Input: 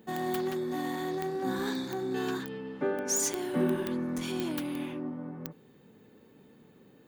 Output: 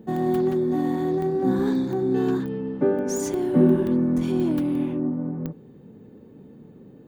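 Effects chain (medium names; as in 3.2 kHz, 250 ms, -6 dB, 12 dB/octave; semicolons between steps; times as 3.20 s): tilt shelf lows +9.5 dB, about 810 Hz; trim +4 dB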